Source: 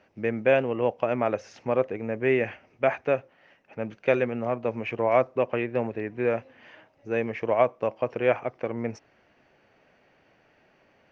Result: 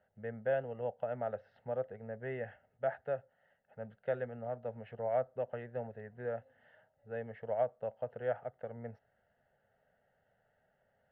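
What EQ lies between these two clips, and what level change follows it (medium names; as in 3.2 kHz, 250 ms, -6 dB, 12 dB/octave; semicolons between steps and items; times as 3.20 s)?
distance through air 490 m; static phaser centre 1.6 kHz, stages 8; -8.5 dB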